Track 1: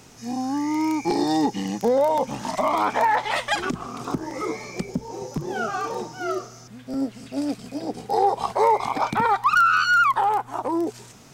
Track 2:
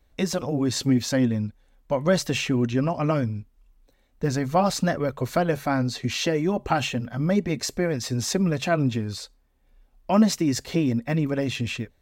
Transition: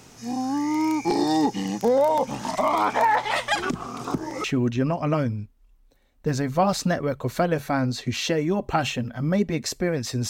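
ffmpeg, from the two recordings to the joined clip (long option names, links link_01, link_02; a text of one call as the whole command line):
ffmpeg -i cue0.wav -i cue1.wav -filter_complex "[0:a]apad=whole_dur=10.29,atrim=end=10.29,atrim=end=4.442[link_01];[1:a]atrim=start=2.408:end=8.26[link_02];[link_01][link_02]acrossfade=duration=0.004:curve1=hsin:curve2=hsin" out.wav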